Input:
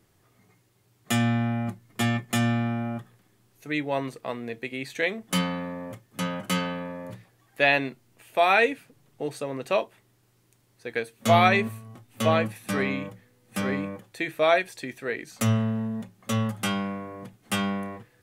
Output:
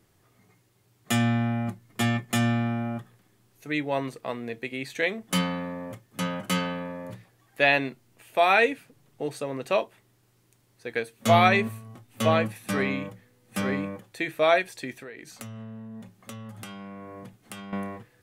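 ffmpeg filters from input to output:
-filter_complex "[0:a]asettb=1/sr,asplit=3[s0][s1][s2];[s0]atrim=end=14.924[s3];[s1]atrim=start=14.92:end=17.73,asetpts=PTS-STARTPTS,afade=t=in:d=0.004:c=qsin,afade=t=out:st=2.806:d=0.004:c=qsin,acompressor=threshold=0.0141:ratio=10:attack=3.2:release=140:knee=1:detection=peak[s4];[s2]atrim=start=17.726[s5];[s3][s4]acrossfade=d=0.004:c1=hsin:c2=qsin[s6];[s6][s5]acrossfade=d=0.004:c1=qsin:c2=hsin"

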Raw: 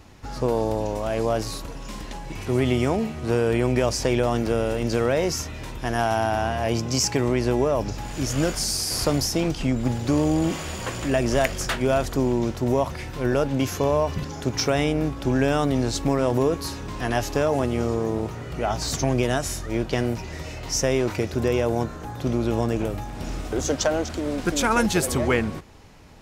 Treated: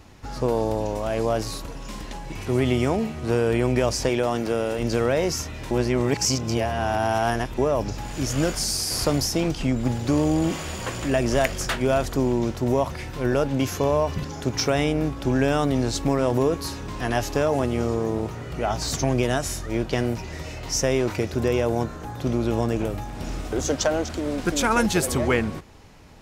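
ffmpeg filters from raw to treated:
-filter_complex "[0:a]asettb=1/sr,asplit=3[s0][s1][s2];[s0]atrim=end=4.094[s3];[s1]atrim=start=4.09:end=4.79,asetpts=PTS-STARTPTS,afade=t=in:d=0.004:c=qsin,afade=t=out:st=0.696:d=0.004:c=qsin,highpass=f=190:p=1[s4];[s2]atrim=start=4.786[s5];[s3][s4]acrossfade=d=0.004:c1=hsin:c2=qsin[s6];[s6][s5]acrossfade=d=0.004:c1=qsin:c2=hsin,asplit=3[s7][s8][s9];[s7]atrim=end=5.712[s10];[s8]atrim=start=5.708:end=7.582,asetpts=PTS-STARTPTS,areverse[s11];[s9]atrim=start=7.578[s12];[s10][s11]acrossfade=d=0.004:c1=hsin:c2=hsin[s13];[s13][s12]acrossfade=d=0.004:c1=hsin:c2=hsin"

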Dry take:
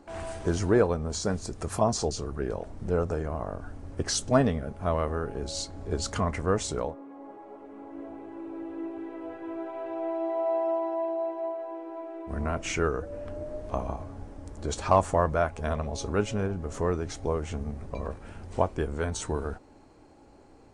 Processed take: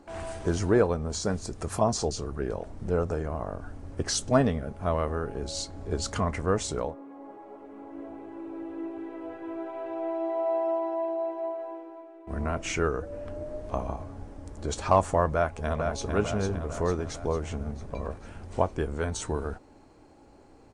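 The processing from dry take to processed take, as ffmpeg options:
-filter_complex "[0:a]asplit=2[s0][s1];[s1]afade=t=in:st=15.34:d=0.01,afade=t=out:st=16.13:d=0.01,aecho=0:1:450|900|1350|1800|2250|2700|3150:0.562341|0.309288|0.170108|0.0935595|0.0514577|0.0283018|0.015566[s2];[s0][s2]amix=inputs=2:normalize=0,asplit=2[s3][s4];[s3]atrim=end=12.27,asetpts=PTS-STARTPTS,afade=t=out:st=11.68:d=0.59:c=qua:silence=0.316228[s5];[s4]atrim=start=12.27,asetpts=PTS-STARTPTS,afade=t=in:d=0.004:c=hsin:silence=0.316228[s6];[s5][s6]concat=n=2:v=0:a=1"

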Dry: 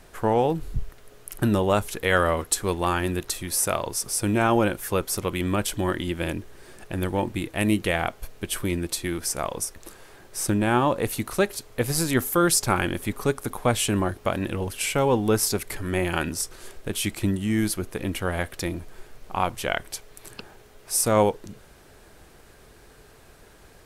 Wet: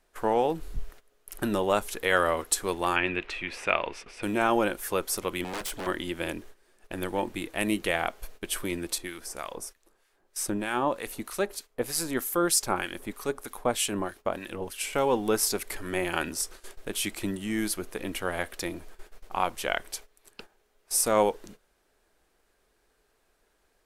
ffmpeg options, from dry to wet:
-filter_complex "[0:a]asettb=1/sr,asplit=3[s0][s1][s2];[s0]atrim=end=2.964[s3];[s1]atrim=start=2.96:end=4.23,asetpts=PTS-STARTPTS,afade=t=in:d=0.004:c=qsin,afade=t=out:st=1.266:d=0.004:c=qsin,lowpass=f=2500:t=q:w=4.1[s4];[s2]atrim=start=4.226[s5];[s3][s4]acrossfade=d=0.004:c1=hsin:c2=qsin[s6];[s6][s5]acrossfade=d=0.004:c1=qsin:c2=hsin,asettb=1/sr,asplit=3[s7][s8][s9];[s7]atrim=end=5.444[s10];[s8]atrim=start=5.44:end=5.87,asetpts=PTS-STARTPTS,afade=t=in:d=0.004:c=qsin,afade=t=out:st=0.426:d=0.004:c=qsin,aeval=exprs='0.0531*(abs(mod(val(0)/0.0531+3,4)-2)-1)':c=same[s11];[s9]atrim=start=5.866[s12];[s10][s11]acrossfade=d=0.004:c1=hsin:c2=qsin[s13];[s13][s12]acrossfade=d=0.004:c1=qsin:c2=hsin,asettb=1/sr,asplit=3[s14][s15][s16];[s14]atrim=end=8.984[s17];[s15]atrim=start=8.98:end=14.93,asetpts=PTS-STARTPTS,afade=t=in:d=0.004:c=qsin,afade=t=out:st=5.946:d=0.004:c=qsin,acrossover=split=1300[s18][s19];[s18]aeval=exprs='val(0)*(1-0.7/2+0.7/2*cos(2*PI*3.2*n/s))':c=same[s20];[s19]aeval=exprs='val(0)*(1-0.7/2-0.7/2*cos(2*PI*3.2*n/s))':c=same[s21];[s20][s21]amix=inputs=2:normalize=0[s22];[s16]atrim=start=14.926[s23];[s17][s22]acrossfade=d=0.004:c1=hsin:c2=qsin[s24];[s24][s23]acrossfade=d=0.004:c1=qsin:c2=hsin,agate=range=0.178:threshold=0.01:ratio=16:detection=peak,equalizer=f=110:t=o:w=1.5:g=-13.5,volume=0.794"

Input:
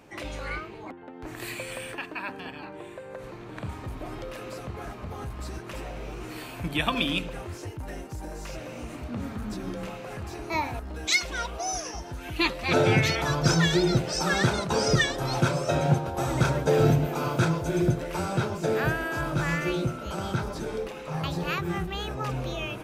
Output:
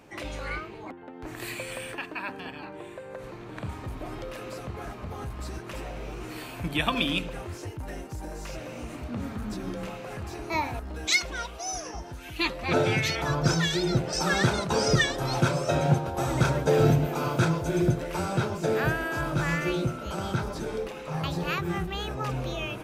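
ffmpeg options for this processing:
-filter_complex "[0:a]asettb=1/sr,asplit=3[s0][s1][s2];[s0]atrim=end=11.224[s3];[s1]atrim=start=11.22:end=14.13,asetpts=PTS-STARTPTS,afade=t=in:d=0.004:c=qsin,afade=t=out:st=2.906:d=0.004:c=qsin,acrossover=split=1900[s4][s5];[s4]aeval=exprs='val(0)*(1-0.5/2+0.5/2*cos(2*PI*1.4*n/s))':c=same[s6];[s5]aeval=exprs='val(0)*(1-0.5/2-0.5/2*cos(2*PI*1.4*n/s))':c=same[s7];[s6][s7]amix=inputs=2:normalize=0[s8];[s2]atrim=start=14.126[s9];[s3][s8]acrossfade=d=0.004:c1=hsin:c2=qsin[s10];[s10][s9]acrossfade=d=0.004:c1=qsin:c2=hsin"

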